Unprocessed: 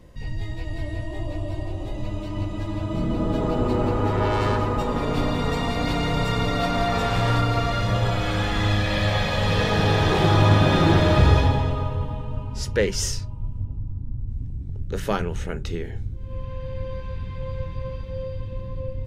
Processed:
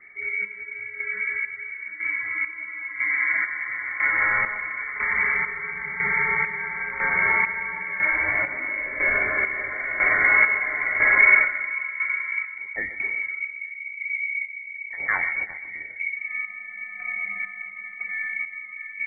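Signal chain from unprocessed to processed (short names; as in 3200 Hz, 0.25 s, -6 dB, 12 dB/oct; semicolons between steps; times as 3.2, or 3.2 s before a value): notch 1300 Hz, Q 15; frequency shift +310 Hz; chopper 1 Hz, depth 65%, duty 45%; on a send: split-band echo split 600 Hz, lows 0.434 s, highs 0.13 s, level -14 dB; on the sum: inverted band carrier 2600 Hz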